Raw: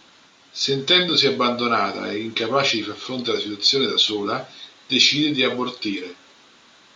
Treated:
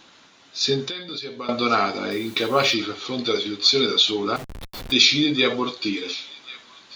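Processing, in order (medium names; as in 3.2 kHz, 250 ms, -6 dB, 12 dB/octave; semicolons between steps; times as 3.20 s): 0.84–1.49 s: compression 16:1, threshold -29 dBFS, peak gain reduction 18.5 dB; feedback echo behind a high-pass 1091 ms, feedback 52%, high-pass 1.7 kHz, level -16 dB; 2.11–2.74 s: word length cut 8-bit, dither triangular; 4.36–4.92 s: Schmitt trigger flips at -31.5 dBFS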